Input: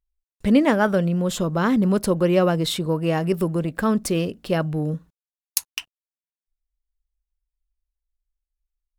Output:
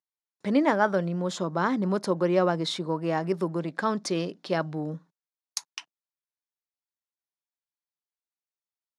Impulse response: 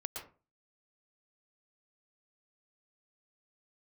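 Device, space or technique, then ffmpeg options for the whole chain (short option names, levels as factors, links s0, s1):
television speaker: -filter_complex "[0:a]highpass=f=180:w=0.5412,highpass=f=180:w=1.3066,equalizer=f=230:t=q:w=4:g=-8,equalizer=f=470:t=q:w=4:g=-4,equalizer=f=920:t=q:w=4:g=4,equalizer=f=2800:t=q:w=4:g=-9,equalizer=f=7900:t=q:w=4:g=-8,lowpass=f=8000:w=0.5412,lowpass=f=8000:w=1.3066,asettb=1/sr,asplit=3[s0][s1][s2];[s0]atrim=end=3.594[s3];[s1]atrim=start=3.59:end=4.75,asetpts=PTS-STARTPTS,afade=t=in:d=0.004:c=qsin,afade=t=out:st=1.156:d=0.004:c=qsin,equalizer=f=3900:t=o:w=1.6:g=4.5[s4];[s2]atrim=start=4.746[s5];[s3][s4]acrossfade=d=0.004:c1=hsin:c2=qsin[s6];[s6][s5]acrossfade=d=0.004:c1=qsin:c2=hsin,volume=0.708"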